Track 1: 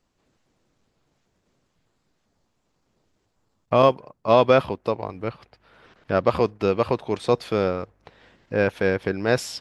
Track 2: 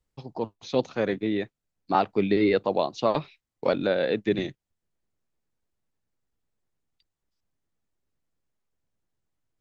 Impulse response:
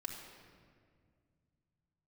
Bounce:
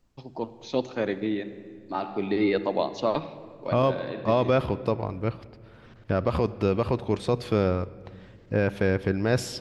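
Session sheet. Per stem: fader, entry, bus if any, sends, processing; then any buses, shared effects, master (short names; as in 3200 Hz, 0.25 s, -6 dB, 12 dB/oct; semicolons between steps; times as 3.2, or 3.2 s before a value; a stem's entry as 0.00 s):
-3.5 dB, 0.00 s, send -13.5 dB, low shelf 190 Hz +11.5 dB
-4.0 dB, 0.00 s, send -5 dB, auto duck -15 dB, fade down 0.50 s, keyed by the first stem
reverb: on, RT60 2.0 s, pre-delay 3 ms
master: limiter -12 dBFS, peak gain reduction 7 dB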